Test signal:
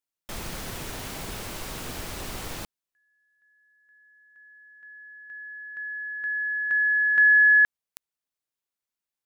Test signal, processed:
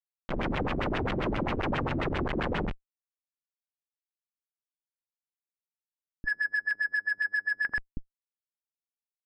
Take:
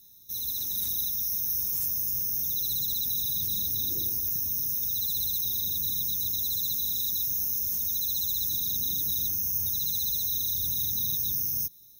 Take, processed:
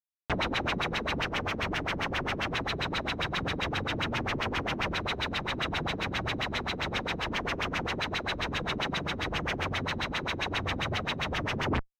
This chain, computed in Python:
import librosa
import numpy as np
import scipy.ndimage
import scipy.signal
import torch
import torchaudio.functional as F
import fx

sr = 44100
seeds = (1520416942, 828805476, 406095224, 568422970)

y = fx.room_flutter(x, sr, wall_m=7.4, rt60_s=0.62)
y = fx.schmitt(y, sr, flips_db=-32.5)
y = fx.filter_lfo_lowpass(y, sr, shape='sine', hz=7.5, low_hz=250.0, high_hz=3000.0, q=2.3)